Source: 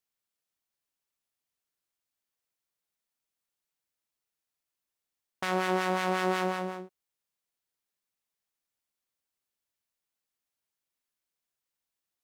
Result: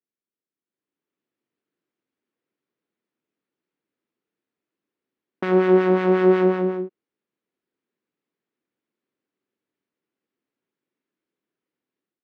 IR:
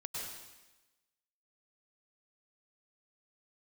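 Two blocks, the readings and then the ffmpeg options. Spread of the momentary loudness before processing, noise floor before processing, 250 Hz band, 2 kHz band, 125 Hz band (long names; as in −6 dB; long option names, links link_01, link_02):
9 LU, below −85 dBFS, +14.5 dB, +2.5 dB, can't be measured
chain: -af "dynaudnorm=framelen=600:gausssize=3:maxgain=12.5dB,highpass=230,lowpass=2200,lowshelf=frequency=500:width_type=q:width=1.5:gain=11,volume=-6.5dB"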